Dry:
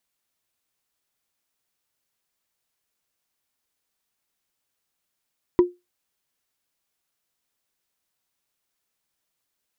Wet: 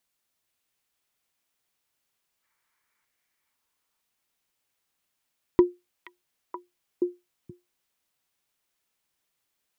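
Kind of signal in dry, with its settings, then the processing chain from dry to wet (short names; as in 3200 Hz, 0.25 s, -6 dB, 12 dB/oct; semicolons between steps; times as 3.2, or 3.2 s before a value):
wood hit, lowest mode 355 Hz, decay 0.21 s, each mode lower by 12 dB, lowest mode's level -8 dB
spectral gain 2.43–3.05, 860–2400 Hz +10 dB; on a send: delay with a stepping band-pass 0.476 s, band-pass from 2500 Hz, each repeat -1.4 oct, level -1.5 dB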